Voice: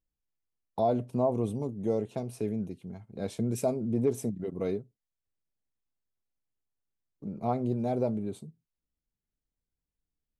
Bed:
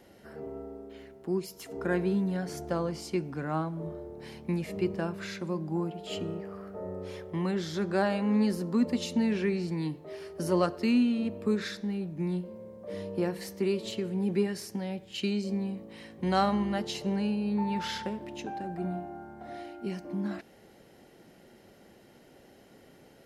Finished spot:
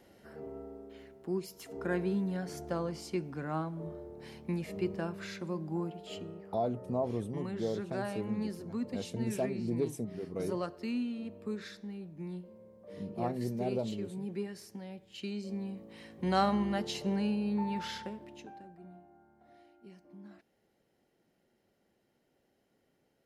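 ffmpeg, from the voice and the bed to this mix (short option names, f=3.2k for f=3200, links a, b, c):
-filter_complex "[0:a]adelay=5750,volume=-5.5dB[a];[1:a]volume=4dB,afade=t=out:st=5.85:d=0.47:silence=0.501187,afade=t=in:st=15.17:d=1.25:silence=0.398107,afade=t=out:st=17.38:d=1.4:silence=0.149624[b];[a][b]amix=inputs=2:normalize=0"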